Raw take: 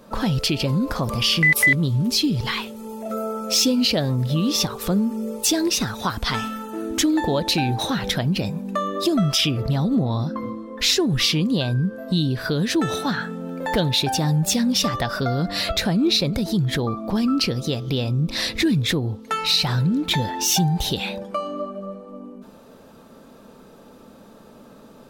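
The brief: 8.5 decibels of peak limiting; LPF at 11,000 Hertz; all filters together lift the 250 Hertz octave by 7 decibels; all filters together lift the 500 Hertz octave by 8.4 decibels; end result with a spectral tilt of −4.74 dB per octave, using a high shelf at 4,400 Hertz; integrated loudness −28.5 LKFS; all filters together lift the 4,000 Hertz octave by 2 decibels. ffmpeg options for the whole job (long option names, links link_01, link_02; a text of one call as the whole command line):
ffmpeg -i in.wav -af "lowpass=11000,equalizer=frequency=250:width_type=o:gain=6.5,equalizer=frequency=500:width_type=o:gain=8.5,equalizer=frequency=4000:width_type=o:gain=5,highshelf=frequency=4400:gain=-5,volume=-9dB,alimiter=limit=-19.5dB:level=0:latency=1" out.wav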